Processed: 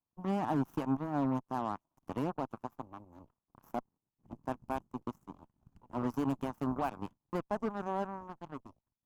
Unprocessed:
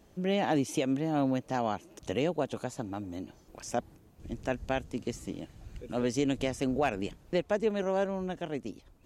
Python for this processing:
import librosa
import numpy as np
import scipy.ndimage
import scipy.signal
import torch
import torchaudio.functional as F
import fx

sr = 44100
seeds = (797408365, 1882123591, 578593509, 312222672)

y = fx.cheby_harmonics(x, sr, harmonics=(7, 8), levels_db=(-17, -22), full_scale_db=-17.5)
y = fx.graphic_eq(y, sr, hz=(125, 250, 500, 1000, 2000, 4000, 8000), db=(5, 6, -7, 11, -9, -10, -7))
y = F.gain(torch.from_numpy(y), -7.0).numpy()